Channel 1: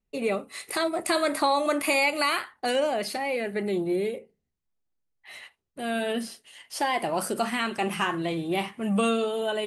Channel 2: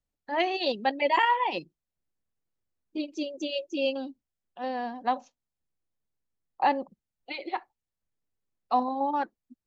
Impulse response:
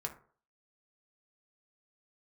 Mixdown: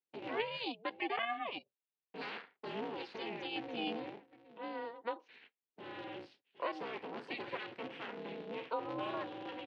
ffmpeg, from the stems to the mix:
-filter_complex "[0:a]agate=range=-13dB:threshold=-47dB:ratio=16:detection=peak,asoftclip=type=tanh:threshold=-19.5dB,aeval=exprs='val(0)*sgn(sin(2*PI*100*n/s))':c=same,volume=-13dB,asplit=3[a][b][c];[a]atrim=end=0.64,asetpts=PTS-STARTPTS,afade=t=out:st=0.636:d=0.004:c=hsin[d];[b]atrim=start=0.64:end=2.14,asetpts=PTS-STARTPTS,volume=0[e];[c]atrim=start=2.14,asetpts=PTS-STARTPTS,afade=t=in:d=0.004:c=hsin[f];[d][e][f]concat=n=3:v=0:a=1,asplit=2[g][h];[h]volume=-16.5dB[i];[1:a]highpass=620,acompressor=threshold=-35dB:ratio=1.5,volume=-3.5dB[j];[i]aecho=0:1:764:1[k];[g][j][k]amix=inputs=3:normalize=0,aeval=exprs='val(0)*sin(2*PI*230*n/s)':c=same,highpass=f=160:w=0.5412,highpass=f=160:w=1.3066,equalizer=f=250:t=q:w=4:g=5,equalizer=f=430:t=q:w=4:g=8,equalizer=f=610:t=q:w=4:g=-4,equalizer=f=1.2k:t=q:w=4:g=-5,equalizer=f=2.7k:t=q:w=4:g=3,lowpass=f=3.9k:w=0.5412,lowpass=f=3.9k:w=1.3066"

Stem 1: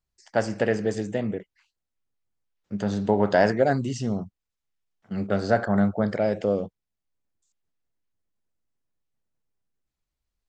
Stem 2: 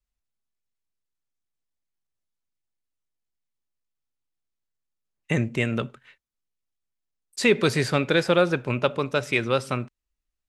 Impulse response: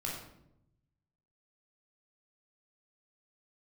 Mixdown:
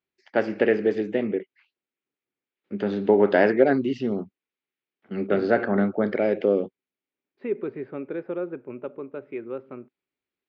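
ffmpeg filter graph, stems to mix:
-filter_complex "[0:a]volume=1.5dB[a];[1:a]lowpass=1k,volume=-11dB[b];[a][b]amix=inputs=2:normalize=0,highpass=230,equalizer=f=270:t=q:w=4:g=5,equalizer=f=380:t=q:w=4:g=8,equalizer=f=690:t=q:w=4:g=-4,equalizer=f=1k:t=q:w=4:g=-4,equalizer=f=2.3k:t=q:w=4:g=5,lowpass=f=3.6k:w=0.5412,lowpass=f=3.6k:w=1.3066"

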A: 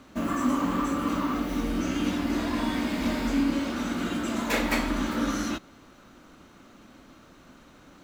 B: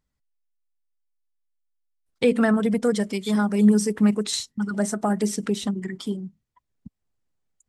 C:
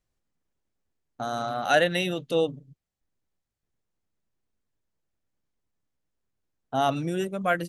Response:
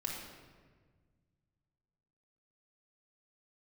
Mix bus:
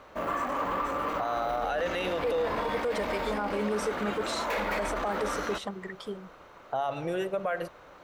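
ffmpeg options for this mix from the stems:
-filter_complex "[0:a]asoftclip=type=tanh:threshold=-25dB,volume=-3dB[a];[1:a]volume=-7.5dB[b];[2:a]acompressor=threshold=-28dB:ratio=6,volume=-1.5dB,asplit=3[c][d][e];[d]volume=-14.5dB[f];[e]apad=whole_len=338783[g];[b][g]sidechaincompress=threshold=-41dB:ratio=8:attack=6.7:release=450[h];[3:a]atrim=start_sample=2205[i];[f][i]afir=irnorm=-1:irlink=0[j];[a][h][c][j]amix=inputs=4:normalize=0,equalizer=f=250:t=o:w=1:g=-12,equalizer=f=500:t=o:w=1:g=11,equalizer=f=1k:t=o:w=1:g=7,equalizer=f=2k:t=o:w=1:g=4,equalizer=f=8k:t=o:w=1:g=-6,alimiter=limit=-21.5dB:level=0:latency=1:release=27"

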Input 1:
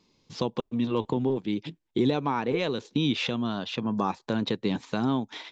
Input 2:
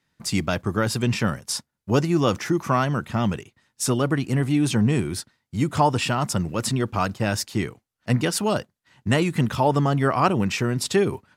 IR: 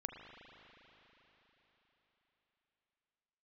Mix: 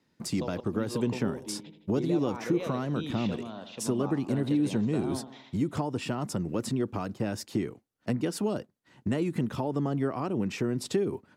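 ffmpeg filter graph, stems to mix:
-filter_complex "[0:a]equalizer=f=600:t=o:w=0.95:g=7.5,volume=-13dB,asplit=2[a][b];[b]volume=-10dB[c];[1:a]acompressor=threshold=-30dB:ratio=4,equalizer=f=320:w=0.6:g=11.5,volume=-5dB[d];[c]aecho=0:1:81|162|243|324|405|486|567|648:1|0.52|0.27|0.141|0.0731|0.038|0.0198|0.0103[e];[a][d][e]amix=inputs=3:normalize=0,acrossover=split=410|3000[f][g][h];[g]acompressor=threshold=-31dB:ratio=6[i];[f][i][h]amix=inputs=3:normalize=0"

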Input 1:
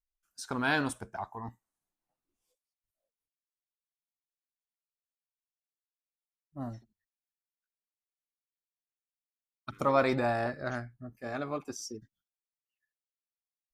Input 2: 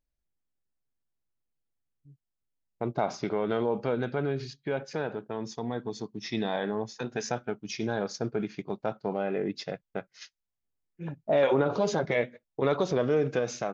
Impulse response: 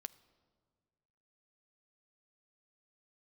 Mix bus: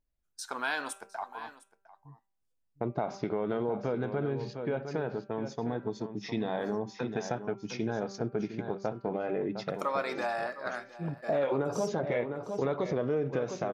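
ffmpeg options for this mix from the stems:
-filter_complex "[0:a]highpass=530,agate=range=-15dB:threshold=-53dB:ratio=16:detection=peak,volume=1.5dB,asplit=2[a][b];[b]volume=-20dB[c];[1:a]highshelf=f=2.4k:g=-10,volume=2dB,asplit=2[d][e];[e]volume=-11dB[f];[c][f]amix=inputs=2:normalize=0,aecho=0:1:707:1[g];[a][d][g]amix=inputs=3:normalize=0,bandreject=f=195.9:t=h:w=4,bandreject=f=391.8:t=h:w=4,bandreject=f=587.7:t=h:w=4,bandreject=f=783.6:t=h:w=4,bandreject=f=979.5:t=h:w=4,bandreject=f=1.1754k:t=h:w=4,bandreject=f=1.3713k:t=h:w=4,bandreject=f=1.5672k:t=h:w=4,bandreject=f=1.7631k:t=h:w=4,bandreject=f=1.959k:t=h:w=4,bandreject=f=2.1549k:t=h:w=4,bandreject=f=2.3508k:t=h:w=4,bandreject=f=2.5467k:t=h:w=4,bandreject=f=2.7426k:t=h:w=4,bandreject=f=2.9385k:t=h:w=4,bandreject=f=3.1344k:t=h:w=4,acompressor=threshold=-29dB:ratio=2.5"

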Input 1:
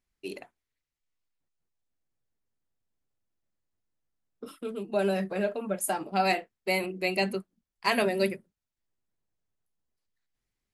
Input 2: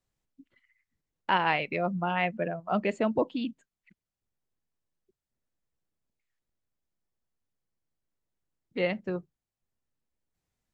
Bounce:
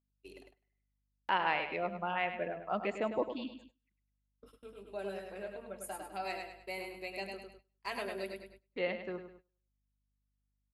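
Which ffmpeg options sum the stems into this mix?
-filter_complex "[0:a]aeval=exprs='val(0)+0.00708*(sin(2*PI*50*n/s)+sin(2*PI*2*50*n/s)/2+sin(2*PI*3*50*n/s)/3+sin(2*PI*4*50*n/s)/4+sin(2*PI*5*50*n/s)/5)':c=same,volume=-13.5dB,asplit=2[a][b];[b]volume=-4.5dB[c];[1:a]volume=-5.5dB,asplit=3[d][e][f];[e]volume=-9.5dB[g];[f]apad=whole_len=473392[h];[a][h]sidechaincompress=threshold=-58dB:ratio=8:attack=16:release=333[i];[c][g]amix=inputs=2:normalize=0,aecho=0:1:102|204|306|408|510:1|0.39|0.152|0.0593|0.0231[j];[i][d][j]amix=inputs=3:normalize=0,bass=f=250:g=-10,treble=f=4k:g=-2,agate=range=-18dB:threshold=-57dB:ratio=16:detection=peak"

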